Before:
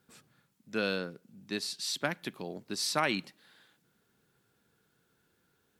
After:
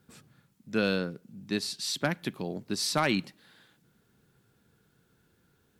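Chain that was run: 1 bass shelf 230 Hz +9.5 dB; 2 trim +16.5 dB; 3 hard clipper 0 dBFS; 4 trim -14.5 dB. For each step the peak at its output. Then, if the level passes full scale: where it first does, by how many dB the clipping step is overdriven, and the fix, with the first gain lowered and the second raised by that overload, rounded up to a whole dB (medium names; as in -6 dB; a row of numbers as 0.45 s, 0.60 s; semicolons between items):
-12.0 dBFS, +4.5 dBFS, 0.0 dBFS, -14.5 dBFS; step 2, 4.5 dB; step 2 +11.5 dB, step 4 -9.5 dB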